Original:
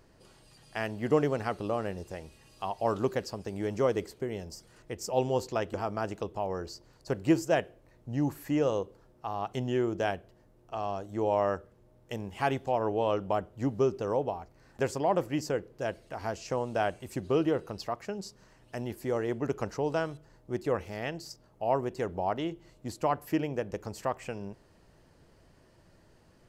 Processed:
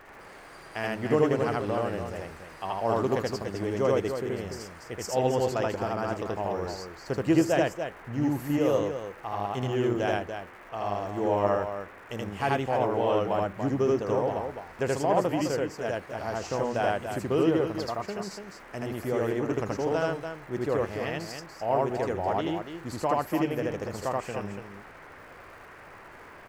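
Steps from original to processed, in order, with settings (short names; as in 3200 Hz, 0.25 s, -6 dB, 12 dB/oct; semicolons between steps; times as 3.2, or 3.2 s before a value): crackle 200/s -50 dBFS; band noise 280–2000 Hz -52 dBFS; loudspeakers at several distances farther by 27 m 0 dB, 99 m -7 dB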